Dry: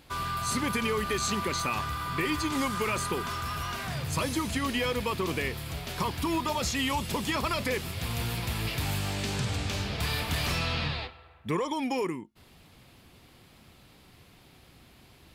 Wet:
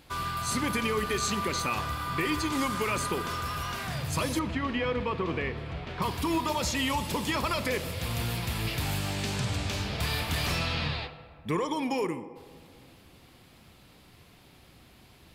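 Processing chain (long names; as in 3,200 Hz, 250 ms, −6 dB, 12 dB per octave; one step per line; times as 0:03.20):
0:04.39–0:06.02: low-pass filter 2,500 Hz 12 dB per octave
feedback echo with a band-pass in the loop 64 ms, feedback 84%, band-pass 630 Hz, level −13.5 dB
on a send at −17 dB: convolution reverb RT60 2.2 s, pre-delay 6 ms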